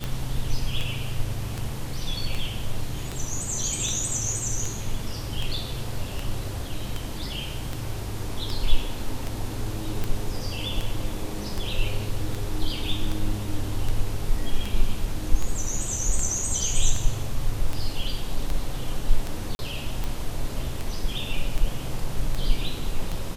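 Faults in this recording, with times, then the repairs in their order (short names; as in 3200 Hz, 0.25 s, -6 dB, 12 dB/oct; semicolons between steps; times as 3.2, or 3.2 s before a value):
tick 78 rpm
19.55–19.59 gap 41 ms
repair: de-click; interpolate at 19.55, 41 ms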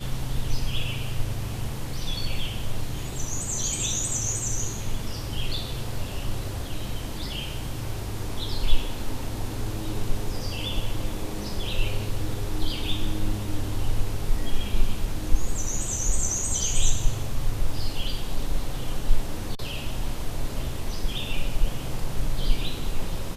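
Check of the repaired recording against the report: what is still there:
none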